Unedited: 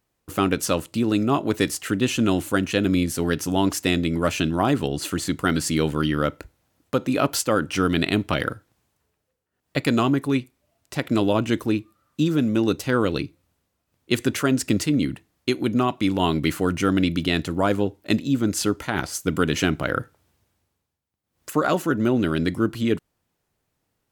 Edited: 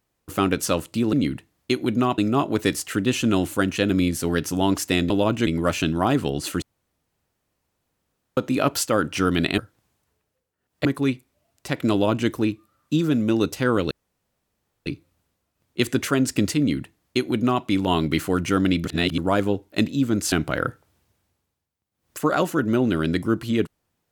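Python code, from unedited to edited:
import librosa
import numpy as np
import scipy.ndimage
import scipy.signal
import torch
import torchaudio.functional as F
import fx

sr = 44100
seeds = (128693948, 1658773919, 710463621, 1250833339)

y = fx.edit(x, sr, fx.room_tone_fill(start_s=5.2, length_s=1.75),
    fx.cut(start_s=8.16, length_s=0.35),
    fx.cut(start_s=9.78, length_s=0.34),
    fx.duplicate(start_s=11.19, length_s=0.37, to_s=4.05),
    fx.insert_room_tone(at_s=13.18, length_s=0.95),
    fx.duplicate(start_s=14.91, length_s=1.05, to_s=1.13),
    fx.reverse_span(start_s=17.17, length_s=0.33),
    fx.cut(start_s=18.64, length_s=1.0), tone=tone)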